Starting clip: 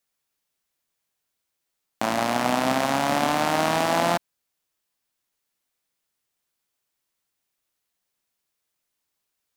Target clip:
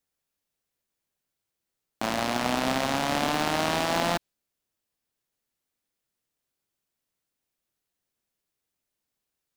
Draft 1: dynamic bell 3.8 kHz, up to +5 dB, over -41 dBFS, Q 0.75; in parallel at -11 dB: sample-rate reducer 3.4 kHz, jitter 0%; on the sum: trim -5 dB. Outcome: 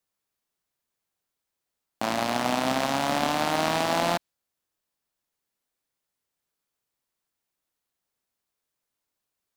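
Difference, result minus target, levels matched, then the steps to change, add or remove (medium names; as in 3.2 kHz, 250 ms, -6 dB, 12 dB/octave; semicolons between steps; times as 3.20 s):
sample-rate reducer: distortion -22 dB
change: sample-rate reducer 1.2 kHz, jitter 0%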